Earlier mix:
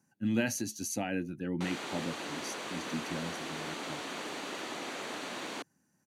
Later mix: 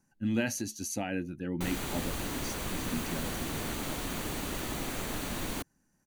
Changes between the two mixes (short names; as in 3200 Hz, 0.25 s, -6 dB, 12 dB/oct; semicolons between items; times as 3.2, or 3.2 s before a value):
background: remove BPF 350–5700 Hz; master: remove HPF 100 Hz 24 dB/oct